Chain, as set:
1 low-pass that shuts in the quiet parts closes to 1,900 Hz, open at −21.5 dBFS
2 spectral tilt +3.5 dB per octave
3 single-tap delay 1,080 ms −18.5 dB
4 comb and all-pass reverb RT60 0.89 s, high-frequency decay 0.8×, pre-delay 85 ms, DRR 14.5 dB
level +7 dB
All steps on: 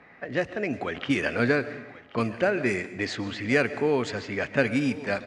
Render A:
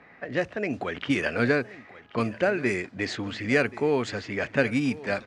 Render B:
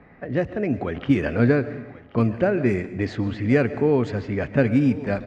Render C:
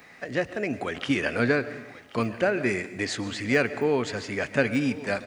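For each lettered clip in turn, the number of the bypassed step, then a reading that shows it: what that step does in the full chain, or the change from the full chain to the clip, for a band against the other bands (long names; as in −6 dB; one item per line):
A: 4, echo-to-direct ratio −13.0 dB to −18.5 dB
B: 2, 4 kHz band −10.0 dB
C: 1, 8 kHz band +4.0 dB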